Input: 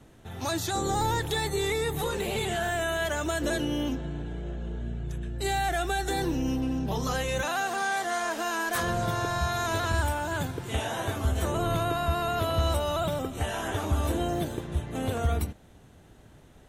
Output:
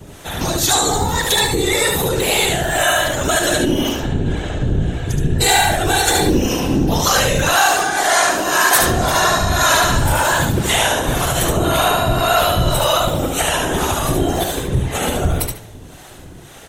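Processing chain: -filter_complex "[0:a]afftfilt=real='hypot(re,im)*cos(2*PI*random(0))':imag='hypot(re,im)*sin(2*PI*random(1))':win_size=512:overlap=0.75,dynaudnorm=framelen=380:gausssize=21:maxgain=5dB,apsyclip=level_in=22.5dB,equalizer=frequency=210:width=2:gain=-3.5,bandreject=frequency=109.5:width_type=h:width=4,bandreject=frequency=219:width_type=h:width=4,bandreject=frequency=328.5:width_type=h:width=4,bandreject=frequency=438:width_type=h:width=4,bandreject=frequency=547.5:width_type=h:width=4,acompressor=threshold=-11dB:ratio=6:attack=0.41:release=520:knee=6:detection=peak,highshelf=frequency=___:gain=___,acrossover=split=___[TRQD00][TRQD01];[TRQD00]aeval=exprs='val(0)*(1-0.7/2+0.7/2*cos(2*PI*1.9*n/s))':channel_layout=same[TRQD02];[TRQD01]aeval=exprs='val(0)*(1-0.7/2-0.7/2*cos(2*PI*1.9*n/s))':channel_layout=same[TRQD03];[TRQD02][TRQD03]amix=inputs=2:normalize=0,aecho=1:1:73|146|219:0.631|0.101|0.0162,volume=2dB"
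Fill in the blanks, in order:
3k, 7.5, 500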